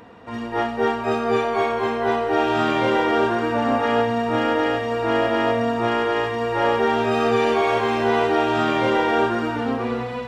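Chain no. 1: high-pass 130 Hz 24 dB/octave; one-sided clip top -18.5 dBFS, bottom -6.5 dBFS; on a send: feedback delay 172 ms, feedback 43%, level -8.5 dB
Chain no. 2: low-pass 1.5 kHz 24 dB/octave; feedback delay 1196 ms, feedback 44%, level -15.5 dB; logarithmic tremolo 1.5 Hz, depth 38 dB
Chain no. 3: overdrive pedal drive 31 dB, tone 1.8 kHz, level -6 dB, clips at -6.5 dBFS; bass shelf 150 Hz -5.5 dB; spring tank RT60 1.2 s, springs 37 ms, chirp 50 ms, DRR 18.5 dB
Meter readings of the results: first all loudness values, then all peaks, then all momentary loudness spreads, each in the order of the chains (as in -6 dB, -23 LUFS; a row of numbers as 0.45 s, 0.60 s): -21.0 LUFS, -27.5 LUFS, -14.0 LUFS; -7.5 dBFS, -8.5 dBFS, -7.0 dBFS; 3 LU, 16 LU, 1 LU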